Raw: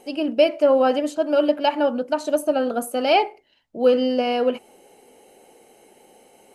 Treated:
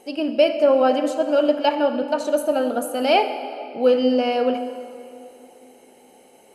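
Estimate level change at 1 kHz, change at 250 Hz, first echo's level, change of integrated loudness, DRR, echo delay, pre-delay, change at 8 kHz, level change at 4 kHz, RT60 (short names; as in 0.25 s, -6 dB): +0.5 dB, +1.0 dB, none, +0.5 dB, 8.5 dB, none, 20 ms, +0.5 dB, +0.5 dB, 2.8 s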